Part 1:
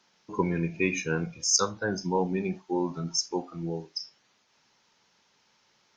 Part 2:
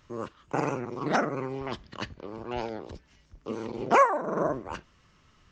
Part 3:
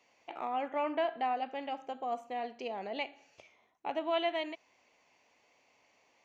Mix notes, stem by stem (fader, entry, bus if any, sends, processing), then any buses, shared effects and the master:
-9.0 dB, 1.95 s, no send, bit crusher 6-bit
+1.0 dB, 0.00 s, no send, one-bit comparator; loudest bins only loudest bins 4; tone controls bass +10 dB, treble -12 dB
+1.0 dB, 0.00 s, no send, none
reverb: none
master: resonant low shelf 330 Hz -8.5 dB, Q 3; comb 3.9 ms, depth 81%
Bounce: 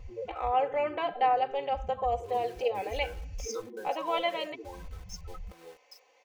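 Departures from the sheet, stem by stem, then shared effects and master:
stem 1 -9.0 dB -> -20.5 dB; stem 2 +1.0 dB -> -8.5 dB

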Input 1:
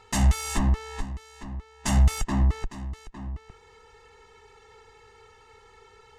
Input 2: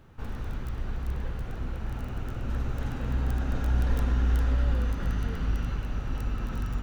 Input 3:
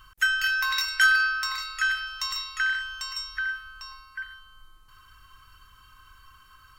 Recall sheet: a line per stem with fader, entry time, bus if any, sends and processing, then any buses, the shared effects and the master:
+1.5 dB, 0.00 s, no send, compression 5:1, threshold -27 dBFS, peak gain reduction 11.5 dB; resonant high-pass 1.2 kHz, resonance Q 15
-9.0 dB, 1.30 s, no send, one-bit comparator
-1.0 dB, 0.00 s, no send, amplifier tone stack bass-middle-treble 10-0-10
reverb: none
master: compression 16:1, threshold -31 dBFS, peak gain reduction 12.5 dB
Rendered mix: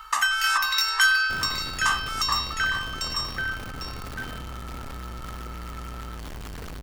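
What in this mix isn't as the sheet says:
stem 3 -1.0 dB -> +5.5 dB; master: missing compression 16:1, threshold -31 dBFS, peak gain reduction 12.5 dB

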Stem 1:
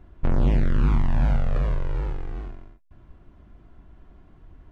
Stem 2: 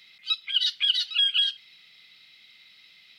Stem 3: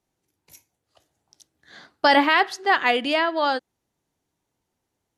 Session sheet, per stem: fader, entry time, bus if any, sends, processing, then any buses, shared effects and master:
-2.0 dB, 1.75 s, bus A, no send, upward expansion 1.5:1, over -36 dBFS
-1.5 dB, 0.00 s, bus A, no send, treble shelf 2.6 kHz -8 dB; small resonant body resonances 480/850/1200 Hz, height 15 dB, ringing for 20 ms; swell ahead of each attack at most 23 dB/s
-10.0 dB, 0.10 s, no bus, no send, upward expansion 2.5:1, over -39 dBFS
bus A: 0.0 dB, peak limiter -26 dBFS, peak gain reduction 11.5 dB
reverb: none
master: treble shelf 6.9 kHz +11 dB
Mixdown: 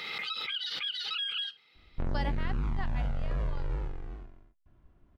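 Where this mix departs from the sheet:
stem 2 -1.5 dB -> -8.0 dB; stem 3 -10.0 dB -> -19.5 dB; master: missing treble shelf 6.9 kHz +11 dB

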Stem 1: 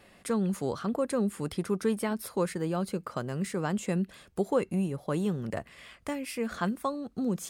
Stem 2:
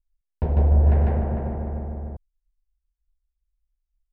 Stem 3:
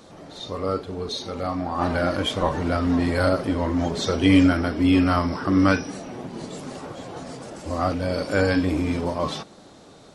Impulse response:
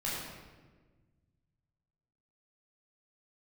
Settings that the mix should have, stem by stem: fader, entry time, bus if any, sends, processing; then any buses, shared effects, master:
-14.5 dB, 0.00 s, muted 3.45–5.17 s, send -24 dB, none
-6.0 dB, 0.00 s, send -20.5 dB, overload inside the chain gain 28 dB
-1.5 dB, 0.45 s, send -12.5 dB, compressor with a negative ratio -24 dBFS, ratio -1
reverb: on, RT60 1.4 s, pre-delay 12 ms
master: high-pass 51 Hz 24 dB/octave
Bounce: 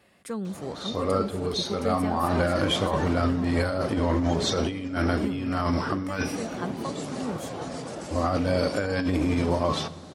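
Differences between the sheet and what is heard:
stem 1 -14.5 dB -> -4.0 dB; stem 2: muted; reverb return -8.5 dB

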